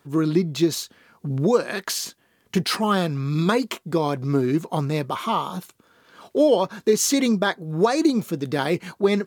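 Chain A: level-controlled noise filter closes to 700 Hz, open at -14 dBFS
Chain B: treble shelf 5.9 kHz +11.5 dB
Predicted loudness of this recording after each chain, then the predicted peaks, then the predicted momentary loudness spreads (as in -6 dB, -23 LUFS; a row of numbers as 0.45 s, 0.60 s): -23.0 LUFS, -21.5 LUFS; -7.0 dBFS, -3.5 dBFS; 9 LU, 8 LU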